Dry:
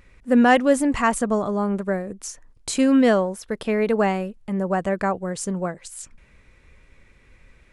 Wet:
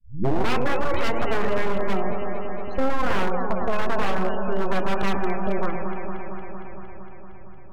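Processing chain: tape start-up on the opening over 0.51 s; peak limiter -13 dBFS, peak gain reduction 8.5 dB; level-controlled noise filter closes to 350 Hz, open at -16 dBFS; full-wave rectifier; steep low-pass 7.6 kHz; spectral gate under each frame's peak -25 dB strong; bass shelf 130 Hz -3 dB; echo whose repeats swap between lows and highs 115 ms, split 900 Hz, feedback 86%, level -8 dB; on a send at -10 dB: reverberation RT60 0.85 s, pre-delay 15 ms; on the sum: wavefolder -16 dBFS; compression 2:1, threshold -23 dBFS, peak gain reduction 3 dB; trim +6.5 dB

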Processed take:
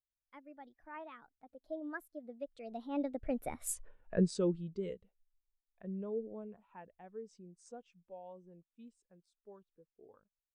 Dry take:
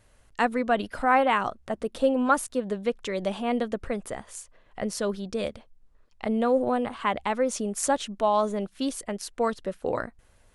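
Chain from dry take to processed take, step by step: Doppler pass-by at 3.78 s, 54 m/s, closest 6.2 m; dynamic bell 920 Hz, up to -4 dB, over -59 dBFS, Q 1.1; spectral contrast expander 1.5:1; trim +8 dB

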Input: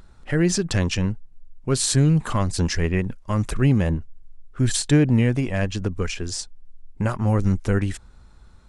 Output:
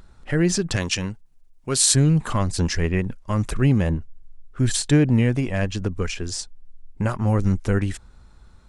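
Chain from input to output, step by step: 0.76–1.95 s: tilt EQ +2 dB/octave

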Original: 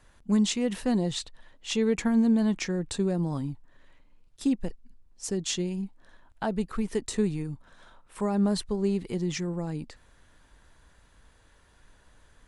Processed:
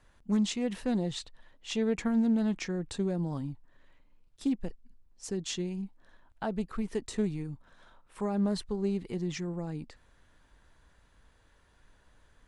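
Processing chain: treble shelf 7.6 kHz -6.5 dB; loudspeaker Doppler distortion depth 0.14 ms; trim -4 dB

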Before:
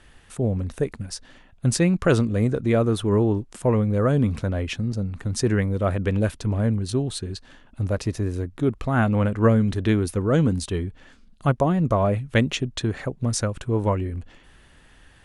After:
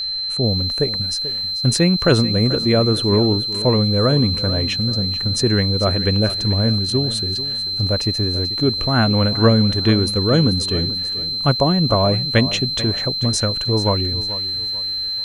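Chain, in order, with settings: whistle 4.1 kHz -25 dBFS; bit-crushed delay 438 ms, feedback 35%, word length 7-bit, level -14 dB; trim +3.5 dB

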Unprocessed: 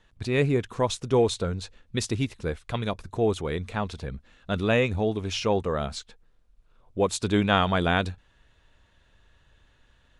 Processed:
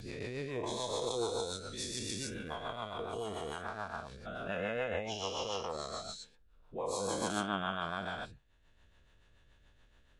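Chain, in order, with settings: every event in the spectrogram widened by 480 ms; spectral noise reduction 9 dB; compression 1.5:1, threshold -58 dBFS, peak gain reduction 16 dB; rotary cabinet horn 7 Hz; AAC 64 kbps 48 kHz

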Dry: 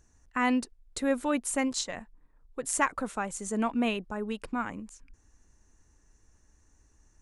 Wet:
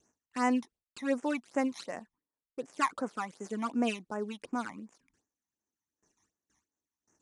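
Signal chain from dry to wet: dead-time distortion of 0.057 ms; high-pass 240 Hz 12 dB/octave; gate with hold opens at -59 dBFS; phase shifter stages 12, 2.7 Hz, lowest notch 460–4100 Hz; resampled via 22.05 kHz

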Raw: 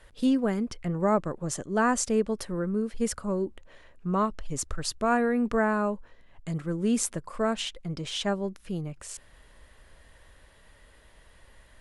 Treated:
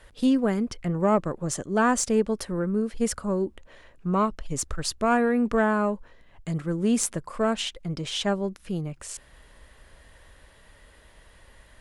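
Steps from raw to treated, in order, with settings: single-diode clipper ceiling -10.5 dBFS; trim +3 dB

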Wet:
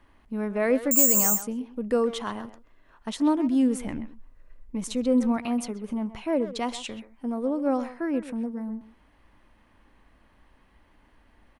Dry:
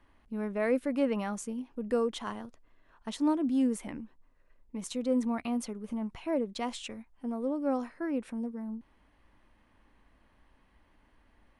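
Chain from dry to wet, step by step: 3.81–5.37 s: bass shelf 120 Hz +10.5 dB; speakerphone echo 130 ms, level -12 dB; 0.91–1.42 s: careless resampling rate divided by 6×, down filtered, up zero stuff; loudness maximiser +8 dB; trim -3 dB

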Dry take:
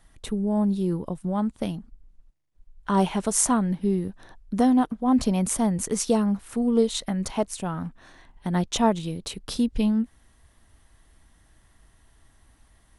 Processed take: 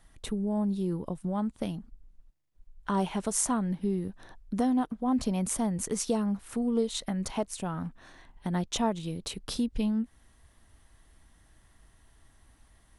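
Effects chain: compression 1.5:1, threshold -30 dBFS, peak gain reduction 6 dB; trim -2 dB

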